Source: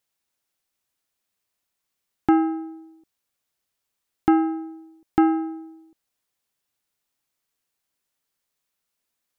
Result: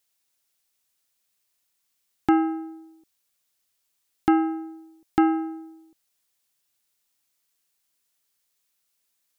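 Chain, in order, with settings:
high-shelf EQ 2,400 Hz +9 dB
level −2 dB

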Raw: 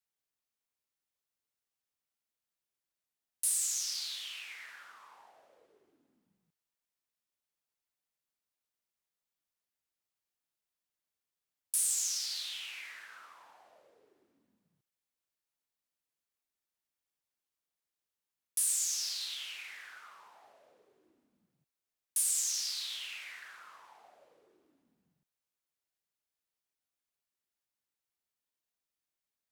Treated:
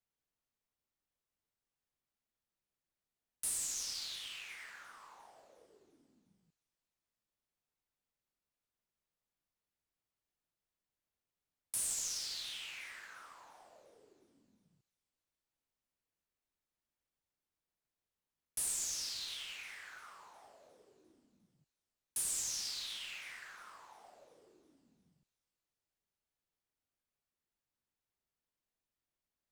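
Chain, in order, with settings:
floating-point word with a short mantissa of 2 bits
spectral tilt −2 dB per octave
delay with a high-pass on its return 353 ms, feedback 51%, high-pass 4,300 Hz, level −18 dB

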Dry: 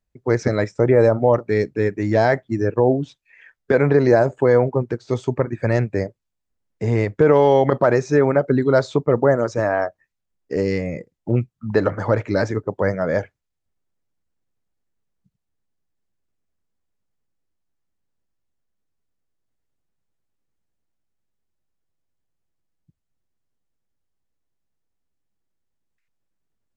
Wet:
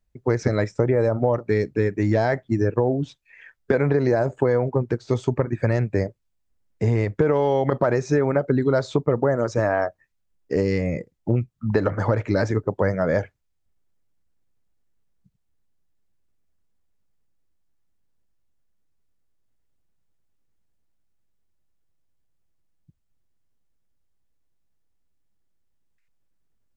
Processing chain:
low-shelf EQ 97 Hz +7 dB
downward compressor, threshold −17 dBFS, peak gain reduction 8 dB
level +1 dB

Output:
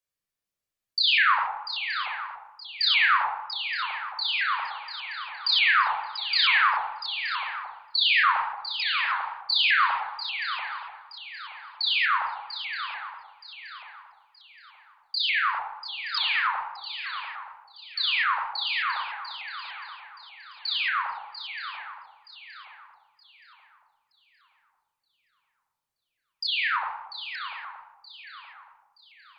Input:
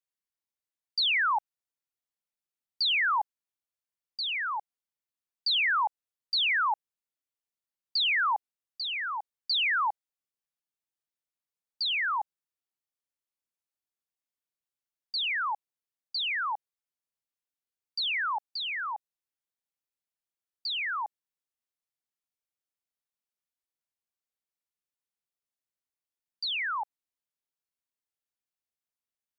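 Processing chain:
feedback echo with a long and a short gap by turns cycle 923 ms, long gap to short 3 to 1, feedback 34%, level −10 dB
rectangular room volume 2,900 cubic metres, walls furnished, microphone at 5.9 metres
pitch modulation by a square or saw wave saw up 3.4 Hz, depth 100 cents

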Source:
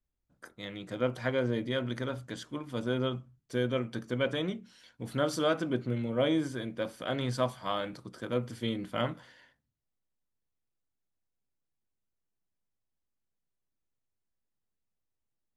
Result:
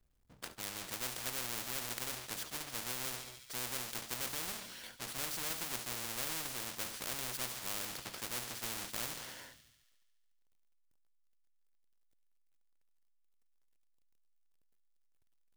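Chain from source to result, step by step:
each half-wave held at its own peak
delay with a high-pass on its return 71 ms, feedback 70%, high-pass 3,200 Hz, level −15 dB
every bin compressed towards the loudest bin 4 to 1
level −3.5 dB

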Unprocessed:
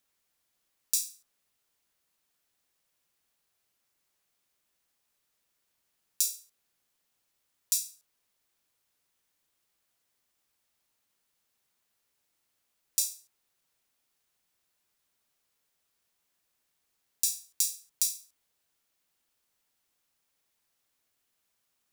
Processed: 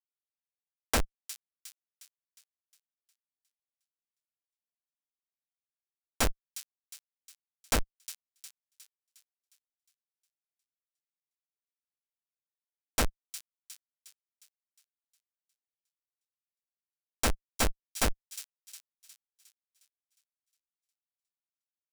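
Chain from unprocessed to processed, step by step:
comparator with hysteresis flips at −20.5 dBFS
bass and treble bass +2 dB, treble +11 dB
leveller curve on the samples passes 5
on a send: delay with a high-pass on its return 359 ms, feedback 47%, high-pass 3,900 Hz, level −12 dB
on the sum: soft clipping −27.5 dBFS, distortion −25 dB
parametric band 130 Hz −7.5 dB 2.8 octaves
level +8.5 dB

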